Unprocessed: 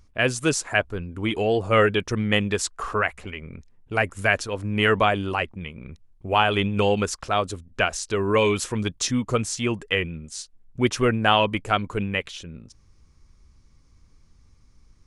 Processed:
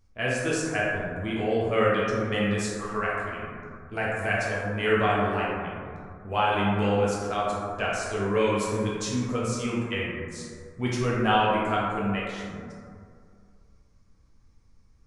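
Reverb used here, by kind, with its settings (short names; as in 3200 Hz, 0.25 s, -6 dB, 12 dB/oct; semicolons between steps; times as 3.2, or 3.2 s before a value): plate-style reverb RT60 2.2 s, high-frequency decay 0.3×, DRR -6.5 dB; gain -11 dB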